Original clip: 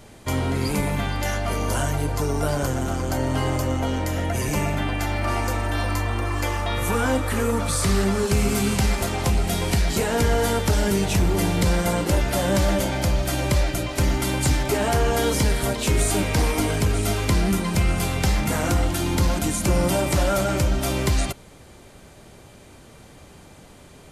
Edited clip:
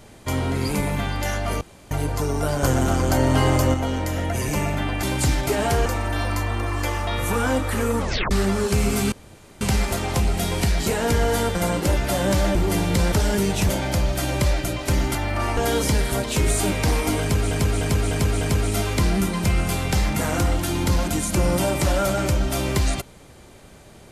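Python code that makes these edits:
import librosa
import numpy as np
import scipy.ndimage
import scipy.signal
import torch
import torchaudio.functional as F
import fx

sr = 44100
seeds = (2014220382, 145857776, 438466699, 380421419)

y = fx.edit(x, sr, fx.room_tone_fill(start_s=1.61, length_s=0.3),
    fx.clip_gain(start_s=2.63, length_s=1.11, db=5.0),
    fx.swap(start_s=5.03, length_s=0.42, other_s=14.25, other_length_s=0.83),
    fx.tape_stop(start_s=7.59, length_s=0.31),
    fx.insert_room_tone(at_s=8.71, length_s=0.49),
    fx.swap(start_s=10.65, length_s=0.57, other_s=11.79, other_length_s=1.0),
    fx.repeat(start_s=16.72, length_s=0.3, count=5), tone=tone)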